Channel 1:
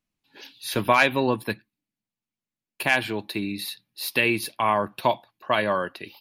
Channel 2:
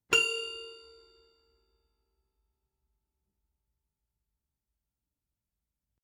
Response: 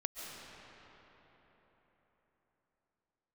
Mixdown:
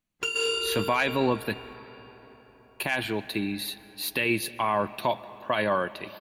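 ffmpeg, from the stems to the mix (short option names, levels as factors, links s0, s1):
-filter_complex "[0:a]bandreject=f=5200:w=8.6,volume=0.841,asplit=3[s0][s1][s2];[s1]volume=0.141[s3];[1:a]dynaudnorm=f=250:g=3:m=5.62,adelay=100,volume=0.841,asplit=2[s4][s5];[s5]volume=0.668[s6];[s2]apad=whole_len=274749[s7];[s4][s7]sidechaingate=range=0.0224:threshold=0.00178:ratio=16:detection=peak[s8];[2:a]atrim=start_sample=2205[s9];[s3][s6]amix=inputs=2:normalize=0[s10];[s10][s9]afir=irnorm=-1:irlink=0[s11];[s0][s8][s11]amix=inputs=3:normalize=0,alimiter=limit=0.178:level=0:latency=1:release=12"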